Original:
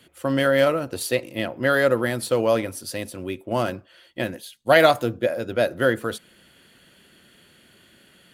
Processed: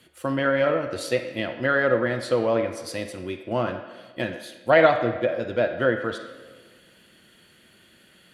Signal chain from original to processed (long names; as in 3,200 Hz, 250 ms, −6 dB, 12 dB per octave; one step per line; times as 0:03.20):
treble cut that deepens with the level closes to 2,400 Hz, closed at −17.5 dBFS
on a send: meter weighting curve A + convolution reverb RT60 1.5 s, pre-delay 6 ms, DRR 4.5 dB
on the sum: level −2 dB